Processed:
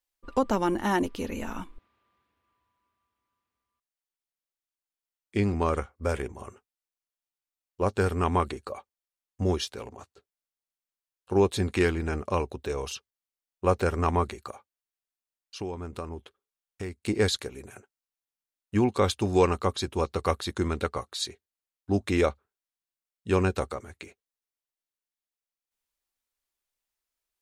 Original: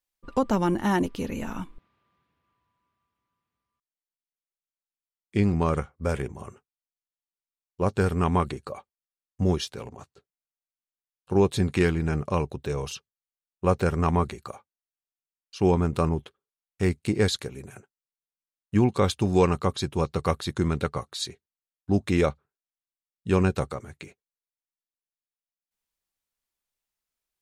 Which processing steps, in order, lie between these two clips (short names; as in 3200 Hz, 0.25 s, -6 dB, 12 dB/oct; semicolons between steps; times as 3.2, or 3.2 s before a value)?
bell 150 Hz -14 dB 0.56 oct; 14.49–17.05 compressor 3:1, threshold -36 dBFS, peak gain reduction 13.5 dB